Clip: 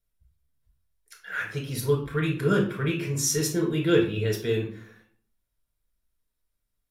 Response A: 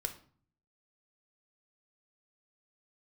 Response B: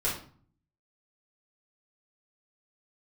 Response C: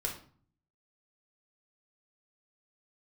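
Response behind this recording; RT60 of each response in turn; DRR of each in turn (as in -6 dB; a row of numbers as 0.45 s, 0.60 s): C; 0.45 s, 0.45 s, 0.45 s; 5.5 dB, -7.5 dB, -1.0 dB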